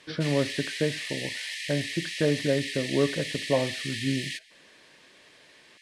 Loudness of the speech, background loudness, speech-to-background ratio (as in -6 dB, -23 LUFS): -29.5 LUFS, -33.0 LUFS, 3.5 dB